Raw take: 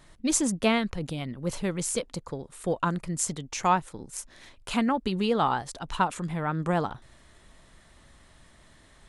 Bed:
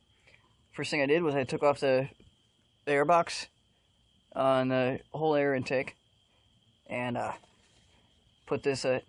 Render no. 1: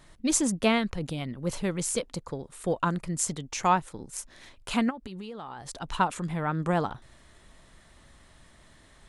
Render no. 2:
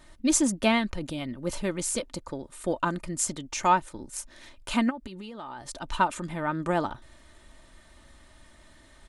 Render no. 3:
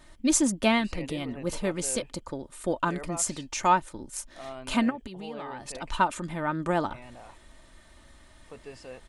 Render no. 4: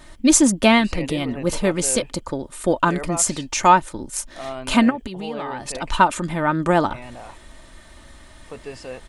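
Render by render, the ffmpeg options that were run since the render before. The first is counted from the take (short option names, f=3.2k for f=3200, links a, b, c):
-filter_complex "[0:a]asplit=3[a][b][c];[a]afade=t=out:st=4.89:d=0.02[d];[b]acompressor=threshold=-36dB:ratio=10:attack=3.2:release=140:knee=1:detection=peak,afade=t=in:st=4.89:d=0.02,afade=t=out:st=5.68:d=0.02[e];[c]afade=t=in:st=5.68:d=0.02[f];[d][e][f]amix=inputs=3:normalize=0"
-af "aecho=1:1:3.3:0.47"
-filter_complex "[1:a]volume=-15dB[a];[0:a][a]amix=inputs=2:normalize=0"
-af "volume=9dB,alimiter=limit=-2dB:level=0:latency=1"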